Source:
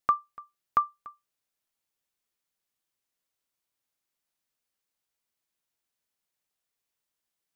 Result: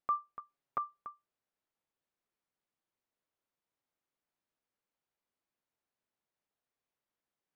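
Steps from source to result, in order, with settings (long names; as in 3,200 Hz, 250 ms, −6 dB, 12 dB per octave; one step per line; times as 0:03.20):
low-pass filter 1,000 Hz 6 dB per octave
low-shelf EQ 120 Hz −6.5 dB
0:00.39–0:00.99: comb filter 7.3 ms, depth 78%
dynamic equaliser 580 Hz, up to +5 dB, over −48 dBFS, Q 1.4
brickwall limiter −27 dBFS, peak gain reduction 11.5 dB
level +2.5 dB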